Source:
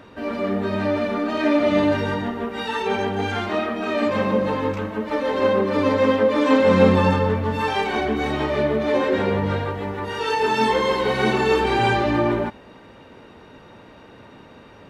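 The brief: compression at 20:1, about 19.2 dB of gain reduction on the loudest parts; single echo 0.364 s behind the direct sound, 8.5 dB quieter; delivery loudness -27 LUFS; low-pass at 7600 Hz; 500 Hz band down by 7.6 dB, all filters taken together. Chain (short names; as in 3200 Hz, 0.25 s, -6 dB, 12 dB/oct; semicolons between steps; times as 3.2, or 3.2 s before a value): LPF 7600 Hz; bell 500 Hz -9 dB; compressor 20:1, threshold -32 dBFS; echo 0.364 s -8.5 dB; gain +8.5 dB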